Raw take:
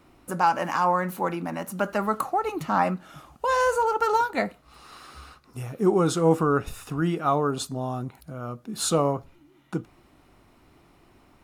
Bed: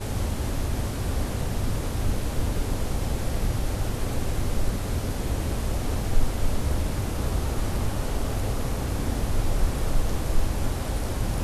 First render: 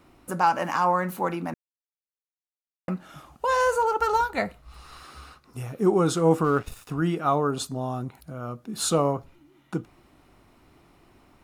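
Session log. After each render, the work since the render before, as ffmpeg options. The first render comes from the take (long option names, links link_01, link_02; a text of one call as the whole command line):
ffmpeg -i in.wav -filter_complex "[0:a]asplit=3[link_01][link_02][link_03];[link_01]afade=type=out:start_time=3.99:duration=0.02[link_04];[link_02]asubboost=boost=6:cutoff=97,afade=type=in:start_time=3.99:duration=0.02,afade=type=out:start_time=5.03:duration=0.02[link_05];[link_03]afade=type=in:start_time=5.03:duration=0.02[link_06];[link_04][link_05][link_06]amix=inputs=3:normalize=0,asplit=3[link_07][link_08][link_09];[link_07]afade=type=out:start_time=6.43:duration=0.02[link_10];[link_08]aeval=exprs='sgn(val(0))*max(abs(val(0))-0.00562,0)':channel_layout=same,afade=type=in:start_time=6.43:duration=0.02,afade=type=out:start_time=6.88:duration=0.02[link_11];[link_09]afade=type=in:start_time=6.88:duration=0.02[link_12];[link_10][link_11][link_12]amix=inputs=3:normalize=0,asplit=3[link_13][link_14][link_15];[link_13]atrim=end=1.54,asetpts=PTS-STARTPTS,afade=type=out:start_time=1.536:duration=0.004:curve=hsin[link_16];[link_14]atrim=start=1.54:end=2.88,asetpts=PTS-STARTPTS,volume=0[link_17];[link_15]atrim=start=2.88,asetpts=PTS-STARTPTS,afade=type=in:duration=0.004:curve=hsin[link_18];[link_16][link_17][link_18]concat=n=3:v=0:a=1" out.wav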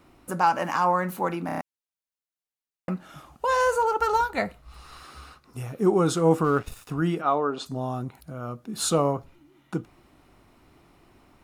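ffmpeg -i in.wav -filter_complex "[0:a]asplit=3[link_01][link_02][link_03];[link_01]afade=type=out:start_time=7.21:duration=0.02[link_04];[link_02]highpass=280,lowpass=4100,afade=type=in:start_time=7.21:duration=0.02,afade=type=out:start_time=7.65:duration=0.02[link_05];[link_03]afade=type=in:start_time=7.65:duration=0.02[link_06];[link_04][link_05][link_06]amix=inputs=3:normalize=0,asplit=6[link_07][link_08][link_09][link_10][link_11][link_12];[link_07]atrim=end=1.492[link_13];[link_08]atrim=start=1.458:end=1.492[link_14];[link_09]atrim=start=1.458:end=1.492[link_15];[link_10]atrim=start=1.458:end=1.492[link_16];[link_11]atrim=start=1.458:end=1.492[link_17];[link_12]atrim=start=1.608[link_18];[link_13][link_14]acrossfade=duration=0.004:curve1=hsin:curve2=hsin[link_19];[link_19][link_15]acrossfade=duration=0.004:curve1=hsin:curve2=hsin[link_20];[link_20][link_16]acrossfade=duration=0.004:curve1=hsin:curve2=hsin[link_21];[link_21][link_17]acrossfade=duration=0.004:curve1=hsin:curve2=hsin[link_22];[link_22][link_18]acrossfade=duration=0.004:curve1=hsin:curve2=hsin" out.wav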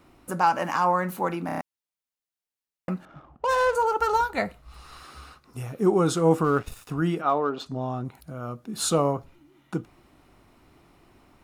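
ffmpeg -i in.wav -filter_complex "[0:a]asettb=1/sr,asplit=3[link_01][link_02][link_03];[link_01]atrim=end=3.054[link_04];[link_02]atrim=start=3.05:end=3.75,asetpts=PTS-STARTPTS,afade=type=in:duration=0.004:curve=qsin,afade=type=out:start_time=0.696:duration=0.004:curve=qsin,adynamicsmooth=sensitivity=4.5:basefreq=1100[link_05];[link_03]atrim=start=3.746[link_06];[link_04][link_05]acrossfade=duration=0.004:curve1=hsin:curve2=qsin[link_07];[link_07][link_06]acrossfade=duration=0.004:curve1=qsin:curve2=hsin,asettb=1/sr,asplit=3[link_08][link_09][link_10];[link_08]atrim=end=7.294[link_11];[link_09]atrim=start=7.29:end=8.05,asetpts=PTS-STARTPTS,afade=type=in:duration=0.004:curve=qsin,afade=type=out:start_time=0.756:duration=0.004:curve=qsin,adynamicsmooth=sensitivity=4.5:basefreq=5100[link_12];[link_10]atrim=start=8.046[link_13];[link_11][link_12]acrossfade=duration=0.004:curve1=hsin:curve2=qsin[link_14];[link_14][link_13]acrossfade=duration=0.004:curve1=qsin:curve2=hsin" out.wav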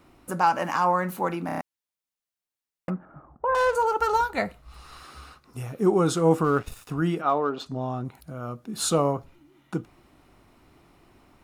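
ffmpeg -i in.wav -filter_complex "[0:a]asettb=1/sr,asplit=3[link_01][link_02][link_03];[link_01]atrim=end=2.904[link_04];[link_02]atrim=start=2.9:end=3.55,asetpts=PTS-STARTPTS,afade=type=in:duration=0.004:curve=qsin,afade=type=out:start_time=0.646:duration=0.004:curve=qsin,lowpass=frequency=1600:width=0.5412,lowpass=frequency=1600:width=1.3066[link_05];[link_03]atrim=start=3.546[link_06];[link_04][link_05]acrossfade=duration=0.004:curve1=hsin:curve2=qsin[link_07];[link_07][link_06]acrossfade=duration=0.004:curve1=qsin:curve2=hsin" out.wav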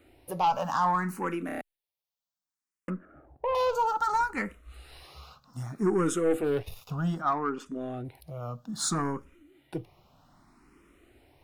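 ffmpeg -i in.wav -filter_complex "[0:a]aeval=exprs='(tanh(6.31*val(0)+0.15)-tanh(0.15))/6.31':channel_layout=same,asplit=2[link_01][link_02];[link_02]afreqshift=0.63[link_03];[link_01][link_03]amix=inputs=2:normalize=1" out.wav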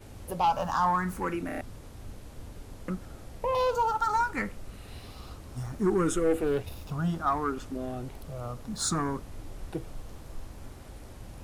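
ffmpeg -i in.wav -i bed.wav -filter_complex "[1:a]volume=-18dB[link_01];[0:a][link_01]amix=inputs=2:normalize=0" out.wav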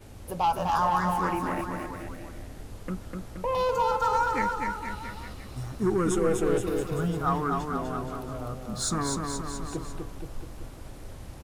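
ffmpeg -i in.wav -af "aecho=1:1:250|475|677.5|859.8|1024:0.631|0.398|0.251|0.158|0.1" out.wav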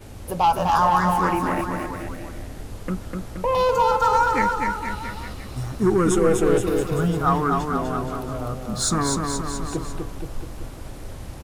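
ffmpeg -i in.wav -af "volume=6.5dB" out.wav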